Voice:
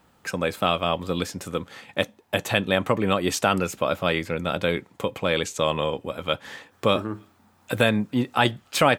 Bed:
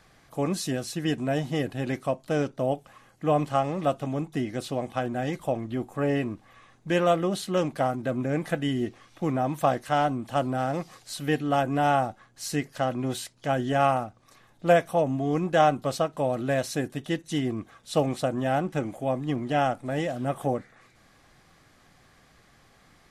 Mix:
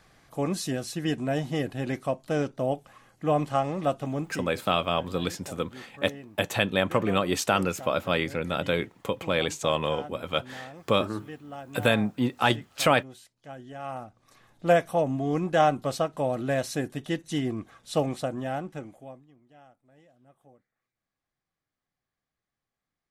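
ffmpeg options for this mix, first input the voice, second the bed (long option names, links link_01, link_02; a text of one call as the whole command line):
ffmpeg -i stem1.wav -i stem2.wav -filter_complex "[0:a]adelay=4050,volume=-2.5dB[link_01];[1:a]volume=14.5dB,afade=type=out:start_time=4.2:duration=0.31:silence=0.16788,afade=type=in:start_time=13.83:duration=0.62:silence=0.16788,afade=type=out:start_time=17.89:duration=1.39:silence=0.0334965[link_02];[link_01][link_02]amix=inputs=2:normalize=0" out.wav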